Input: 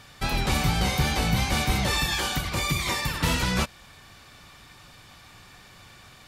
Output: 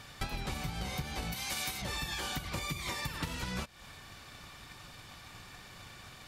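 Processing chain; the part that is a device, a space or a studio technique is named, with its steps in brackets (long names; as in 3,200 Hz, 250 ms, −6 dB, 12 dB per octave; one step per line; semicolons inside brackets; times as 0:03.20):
drum-bus smash (transient designer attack +7 dB, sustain +1 dB; downward compressor 16 to 1, threshold −31 dBFS, peak gain reduction 18.5 dB; soft clipping −22 dBFS, distortion −24 dB)
0:01.32–0:01.82: spectral tilt +3 dB per octave
level −1.5 dB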